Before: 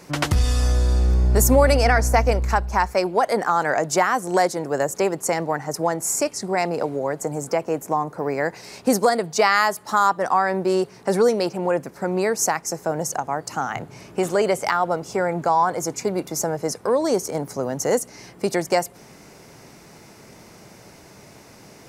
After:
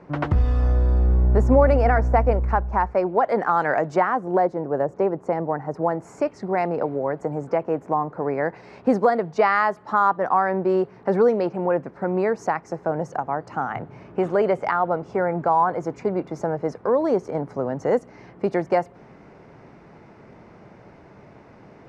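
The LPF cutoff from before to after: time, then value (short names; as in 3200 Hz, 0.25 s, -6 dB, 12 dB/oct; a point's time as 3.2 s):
3.05 s 1300 Hz
3.63 s 2600 Hz
4.33 s 1000 Hz
5.38 s 1000 Hz
6.37 s 1700 Hz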